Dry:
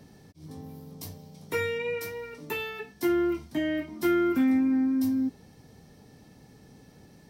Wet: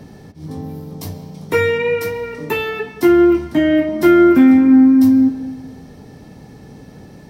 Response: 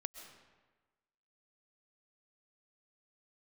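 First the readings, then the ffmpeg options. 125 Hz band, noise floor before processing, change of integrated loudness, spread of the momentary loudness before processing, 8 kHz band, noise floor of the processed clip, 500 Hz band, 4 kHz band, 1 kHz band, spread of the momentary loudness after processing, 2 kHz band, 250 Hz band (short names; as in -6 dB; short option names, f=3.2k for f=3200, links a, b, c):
+14.5 dB, -55 dBFS, +15.0 dB, 20 LU, n/a, -41 dBFS, +14.5 dB, +10.0 dB, +13.5 dB, 21 LU, +12.0 dB, +15.0 dB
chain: -filter_complex "[0:a]asplit=2[a][b];[b]highshelf=f=10k:g=-11.5[c];[1:a]atrim=start_sample=2205,highshelf=f=2.9k:g=-10[d];[c][d]afir=irnorm=-1:irlink=0,volume=8dB[e];[a][e]amix=inputs=2:normalize=0,volume=5.5dB"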